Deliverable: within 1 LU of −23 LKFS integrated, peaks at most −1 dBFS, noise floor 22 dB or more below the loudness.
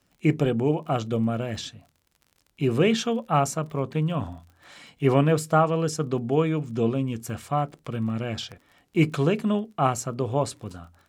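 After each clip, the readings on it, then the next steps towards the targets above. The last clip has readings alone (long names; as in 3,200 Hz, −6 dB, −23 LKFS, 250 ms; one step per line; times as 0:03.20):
crackle rate 36 per second; integrated loudness −25.5 LKFS; sample peak −7.0 dBFS; target loudness −23.0 LKFS
→ click removal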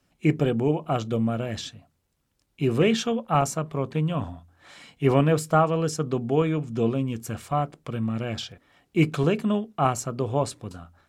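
crackle rate 0.18 per second; integrated loudness −25.5 LKFS; sample peak −7.0 dBFS; target loudness −23.0 LKFS
→ level +2.5 dB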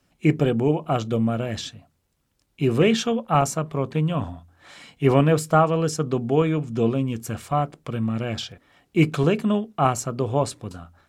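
integrated loudness −23.0 LKFS; sample peak −4.5 dBFS; background noise floor −70 dBFS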